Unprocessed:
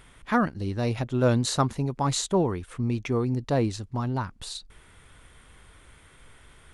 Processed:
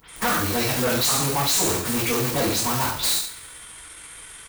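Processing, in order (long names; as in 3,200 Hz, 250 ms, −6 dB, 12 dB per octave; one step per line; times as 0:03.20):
every frequency bin delayed by itself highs late, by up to 117 ms
low-shelf EQ 110 Hz +6 dB
in parallel at −5 dB: comparator with hysteresis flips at −36.5 dBFS
on the sum: RIAA equalisation recording
coupled-rooms reverb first 0.67 s, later 1.7 s, from −24 dB, DRR −9 dB
tempo change 1.5×
gain into a clipping stage and back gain 19.5 dB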